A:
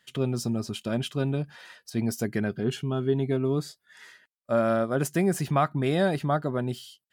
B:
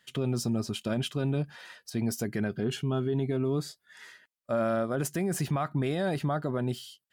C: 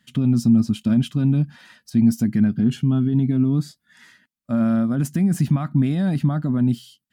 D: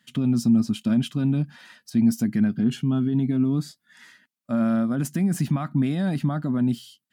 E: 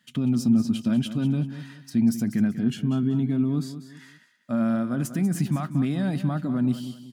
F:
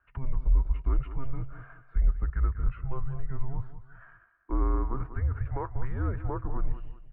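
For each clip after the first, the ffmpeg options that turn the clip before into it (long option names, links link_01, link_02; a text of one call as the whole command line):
ffmpeg -i in.wav -af "alimiter=limit=-21dB:level=0:latency=1:release=28" out.wav
ffmpeg -i in.wav -af "lowshelf=frequency=320:width_type=q:width=3:gain=9" out.wav
ffmpeg -i in.wav -af "highpass=frequency=220:poles=1" out.wav
ffmpeg -i in.wav -af "aecho=1:1:192|384|576:0.251|0.0829|0.0274,volume=-1.5dB" out.wav
ffmpeg -i in.wav -af "highpass=frequency=200:width_type=q:width=0.5412,highpass=frequency=200:width_type=q:width=1.307,lowpass=frequency=2000:width_type=q:width=0.5176,lowpass=frequency=2000:width_type=q:width=0.7071,lowpass=frequency=2000:width_type=q:width=1.932,afreqshift=-270" out.wav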